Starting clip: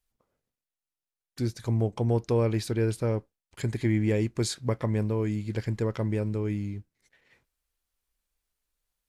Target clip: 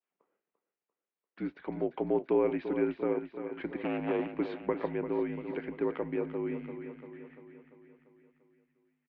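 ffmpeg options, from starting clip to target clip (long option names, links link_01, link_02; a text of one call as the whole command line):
ffmpeg -i in.wav -filter_complex "[0:a]asettb=1/sr,asplit=3[link_01][link_02][link_03];[link_01]atrim=end=3.764[link_04];[link_02]atrim=start=3.76:end=4.37,asetpts=PTS-STARTPTS,afade=type=in:duration=0.004:curve=qsin,afade=type=out:start_time=0.606:duration=0.004:curve=qsin,aeval=exprs='0.0841*(abs(mod(val(0)/0.0841+3,4)-2)-1)':channel_layout=same[link_05];[link_03]atrim=start=4.366[link_06];[link_04][link_05]acrossfade=duration=0.004:curve1=hsin:curve2=qsin[link_07];[link_07][link_06]acrossfade=duration=0.004:curve1=qsin:curve2=hsin,highpass=frequency=310:width_type=q:width=0.5412,highpass=frequency=310:width_type=q:width=1.307,lowpass=frequency=2800:width_type=q:width=0.5176,lowpass=frequency=2800:width_type=q:width=0.7071,lowpass=frequency=2800:width_type=q:width=1.932,afreqshift=-56,asplit=2[link_08][link_09];[link_09]aecho=0:1:344|688|1032|1376|1720|2064|2408:0.335|0.188|0.105|0.0588|0.0329|0.0184|0.0103[link_10];[link_08][link_10]amix=inputs=2:normalize=0,adynamicequalizer=threshold=0.00282:dfrequency=1700:dqfactor=1.4:tfrequency=1700:tqfactor=1.4:attack=5:release=100:ratio=0.375:range=2:mode=cutabove:tftype=bell" out.wav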